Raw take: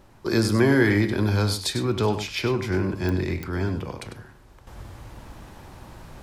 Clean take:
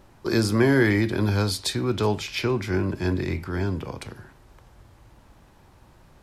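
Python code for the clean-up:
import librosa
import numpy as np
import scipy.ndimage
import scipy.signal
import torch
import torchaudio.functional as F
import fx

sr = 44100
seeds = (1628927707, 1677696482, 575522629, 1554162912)

y = fx.fix_declick_ar(x, sr, threshold=10.0)
y = fx.fix_echo_inverse(y, sr, delay_ms=98, level_db=-10.0)
y = fx.fix_level(y, sr, at_s=4.67, step_db=-10.0)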